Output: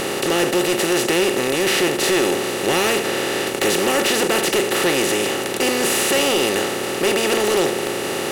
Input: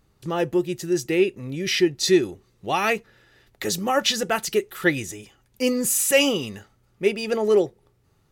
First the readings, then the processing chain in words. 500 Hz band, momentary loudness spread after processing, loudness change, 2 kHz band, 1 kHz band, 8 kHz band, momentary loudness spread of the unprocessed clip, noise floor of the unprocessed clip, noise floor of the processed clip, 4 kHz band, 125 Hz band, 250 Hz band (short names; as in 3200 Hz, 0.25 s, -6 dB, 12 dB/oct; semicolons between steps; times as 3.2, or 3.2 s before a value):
+4.5 dB, 4 LU, +4.5 dB, +7.0 dB, +6.0 dB, +5.5 dB, 11 LU, -64 dBFS, -25 dBFS, +7.0 dB, +1.5 dB, +3.5 dB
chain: per-bin compression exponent 0.2; hard clip -7.5 dBFS, distortion -15 dB; gain -5 dB